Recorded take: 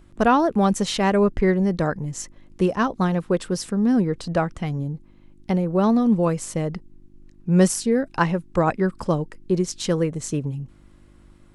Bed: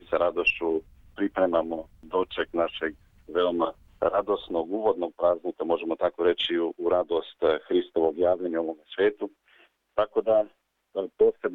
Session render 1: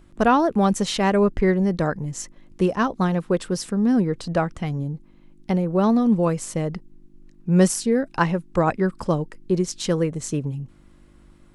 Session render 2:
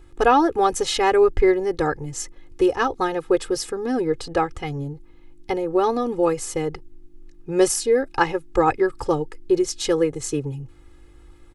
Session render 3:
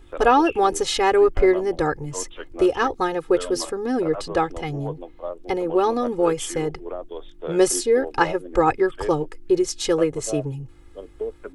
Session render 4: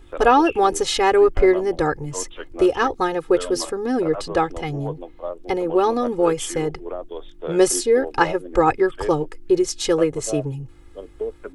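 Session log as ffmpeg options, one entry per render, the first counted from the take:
ffmpeg -i in.wav -af "bandreject=frequency=50:width_type=h:width=4,bandreject=frequency=100:width_type=h:width=4" out.wav
ffmpeg -i in.wav -af "equalizer=frequency=180:width=4.8:gain=-11.5,aecho=1:1:2.4:0.91" out.wav
ffmpeg -i in.wav -i bed.wav -filter_complex "[1:a]volume=-9dB[link_01];[0:a][link_01]amix=inputs=2:normalize=0" out.wav
ffmpeg -i in.wav -af "volume=1.5dB" out.wav

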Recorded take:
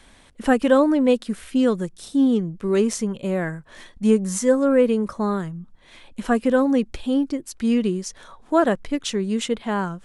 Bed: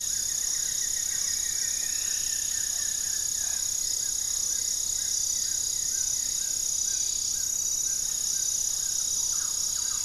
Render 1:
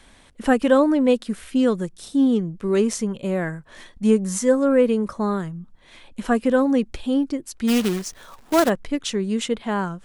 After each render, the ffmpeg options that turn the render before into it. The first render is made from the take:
ffmpeg -i in.wav -filter_complex "[0:a]asplit=3[link_01][link_02][link_03];[link_01]afade=type=out:start_time=7.67:duration=0.02[link_04];[link_02]acrusher=bits=2:mode=log:mix=0:aa=0.000001,afade=type=in:start_time=7.67:duration=0.02,afade=type=out:start_time=8.68:duration=0.02[link_05];[link_03]afade=type=in:start_time=8.68:duration=0.02[link_06];[link_04][link_05][link_06]amix=inputs=3:normalize=0" out.wav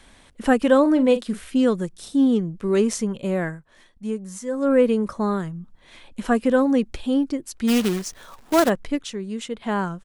ffmpeg -i in.wav -filter_complex "[0:a]asplit=3[link_01][link_02][link_03];[link_01]afade=type=out:start_time=0.84:duration=0.02[link_04];[link_02]asplit=2[link_05][link_06];[link_06]adelay=42,volume=-12dB[link_07];[link_05][link_07]amix=inputs=2:normalize=0,afade=type=in:start_time=0.84:duration=0.02,afade=type=out:start_time=1.41:duration=0.02[link_08];[link_03]afade=type=in:start_time=1.41:duration=0.02[link_09];[link_04][link_08][link_09]amix=inputs=3:normalize=0,asplit=5[link_10][link_11][link_12][link_13][link_14];[link_10]atrim=end=3.65,asetpts=PTS-STARTPTS,afade=type=out:start_time=3.45:duration=0.2:silence=0.298538[link_15];[link_11]atrim=start=3.65:end=4.51,asetpts=PTS-STARTPTS,volume=-10.5dB[link_16];[link_12]atrim=start=4.51:end=9.022,asetpts=PTS-STARTPTS,afade=type=in:duration=0.2:silence=0.298538[link_17];[link_13]atrim=start=9.018:end=9.622,asetpts=PTS-STARTPTS,volume=-6.5dB[link_18];[link_14]atrim=start=9.618[link_19];[link_15][link_16][link_17]concat=n=3:v=0:a=1[link_20];[link_20][link_18]acrossfade=duration=0.004:curve1=hsin:curve2=hsin[link_21];[link_21][link_19]acrossfade=duration=0.004:curve1=hsin:curve2=hsin" out.wav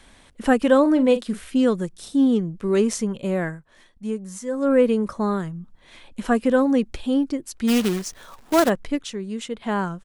ffmpeg -i in.wav -af anull out.wav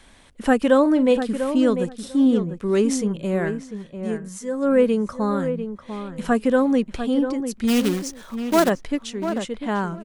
ffmpeg -i in.wav -filter_complex "[0:a]asplit=2[link_01][link_02];[link_02]adelay=696,lowpass=frequency=1900:poles=1,volume=-8.5dB,asplit=2[link_03][link_04];[link_04]adelay=696,lowpass=frequency=1900:poles=1,volume=0.16[link_05];[link_01][link_03][link_05]amix=inputs=3:normalize=0" out.wav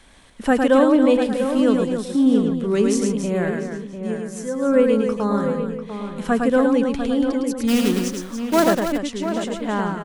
ffmpeg -i in.wav -af "aecho=1:1:107.9|282.8:0.631|0.355" out.wav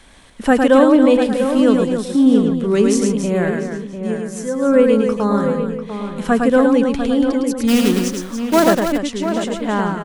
ffmpeg -i in.wav -af "volume=4dB,alimiter=limit=-1dB:level=0:latency=1" out.wav

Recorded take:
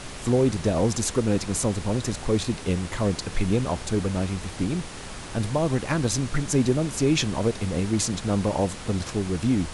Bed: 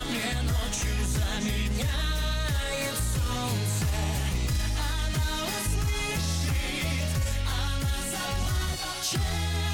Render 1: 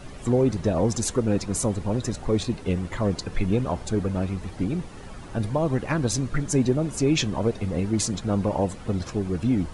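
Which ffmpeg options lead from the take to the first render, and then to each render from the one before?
ffmpeg -i in.wav -af "afftdn=noise_reduction=12:noise_floor=-38" out.wav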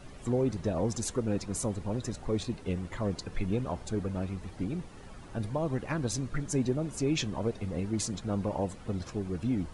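ffmpeg -i in.wav -af "volume=-7.5dB" out.wav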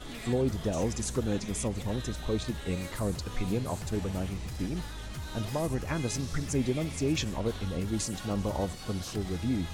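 ffmpeg -i in.wav -i bed.wav -filter_complex "[1:a]volume=-12.5dB[link_01];[0:a][link_01]amix=inputs=2:normalize=0" out.wav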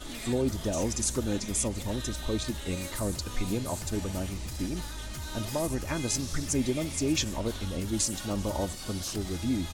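ffmpeg -i in.wav -af "bass=frequency=250:gain=0,treble=frequency=4000:gain=7,aecho=1:1:3.3:0.31" out.wav

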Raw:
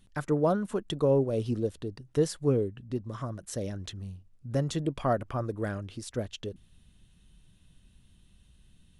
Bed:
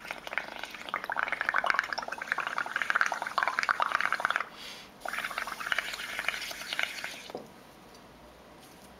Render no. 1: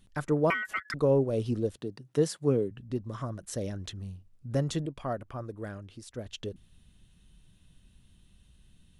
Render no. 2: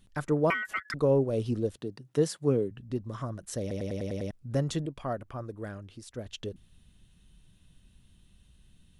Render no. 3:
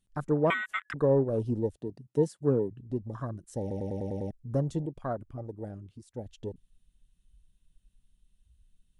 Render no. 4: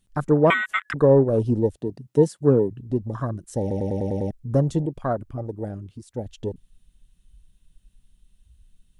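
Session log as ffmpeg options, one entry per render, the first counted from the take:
ffmpeg -i in.wav -filter_complex "[0:a]asettb=1/sr,asplit=3[link_01][link_02][link_03];[link_01]atrim=end=0.504[link_04];[link_02]atrim=start=0.5:end=0.94,asetpts=PTS-STARTPTS,afade=type=in:duration=0.004:curve=qsin,afade=type=out:start_time=0.436:duration=0.004:curve=qsin,aeval=exprs='val(0)*sin(2*PI*1700*n/s)':channel_layout=same[link_05];[link_03]atrim=start=0.936[link_06];[link_04][link_05]acrossfade=duration=0.004:curve1=hsin:curve2=qsin[link_07];[link_07][link_06]acrossfade=duration=0.004:curve1=qsin:curve2=hsin,asettb=1/sr,asplit=3[link_08][link_09][link_10];[link_08]atrim=end=1.764[link_11];[link_09]atrim=start=1.76:end=2.71,asetpts=PTS-STARTPTS,afade=type=in:duration=0.004:curve=qsin,afade=type=out:start_time=0.946:duration=0.004:curve=qsin,highpass=frequency=120:width=0.5412,highpass=frequency=120:width=1.3066[link_12];[link_10]atrim=start=2.706[link_13];[link_11][link_12]acrossfade=duration=0.004:curve1=hsin:curve2=qsin[link_14];[link_14][link_13]acrossfade=duration=0.004:curve1=qsin:curve2=hsin,asplit=3[link_15][link_16][link_17];[link_15]atrim=end=4.862[link_18];[link_16]atrim=start=4.858:end=6.262,asetpts=PTS-STARTPTS,volume=-6.5dB[link_19];[link_17]atrim=start=6.258[link_20];[link_18][link_19]acrossfade=duration=0.004:curve1=hsin:curve2=hsin[link_21];[link_21][link_20]acrossfade=duration=0.004:curve1=hsin:curve2=hsin" out.wav
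ffmpeg -i in.wav -filter_complex "[0:a]asplit=8[link_01][link_02][link_03][link_04][link_05][link_06][link_07][link_08];[link_01]atrim=end=3.712[link_09];[link_02]atrim=start=3.608:end=3.712[link_10];[link_03]atrim=start=3.608:end=3.712[link_11];[link_04]atrim=start=3.608:end=3.712[link_12];[link_05]atrim=start=3.608:end=3.712[link_13];[link_06]atrim=start=3.608:end=3.712[link_14];[link_07]atrim=start=3.608:end=3.712[link_15];[link_08]atrim=start=4.308[link_16];[link_09][link_10]acrossfade=duration=0.004:curve1=hsin:curve2=hsin[link_17];[link_17][link_11]acrossfade=duration=0.004:curve1=hsin:curve2=hsin[link_18];[link_18][link_12]acrossfade=duration=0.004:curve1=hsin:curve2=hsin[link_19];[link_19][link_13]acrossfade=duration=0.004:curve1=hsin:curve2=hsin[link_20];[link_20][link_14]acrossfade=duration=0.004:curve1=hsin:curve2=hsin[link_21];[link_21][link_15]acrossfade=duration=0.004:curve1=hsin:curve2=hsin[link_22];[link_22][link_16]acrossfade=duration=0.004:curve1=hsin:curve2=hsin" out.wav
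ffmpeg -i in.wav -af "afwtdn=0.0141,equalizer=frequency=8500:width_type=o:width=1.1:gain=7" out.wav
ffmpeg -i in.wav -af "volume=8.5dB" out.wav

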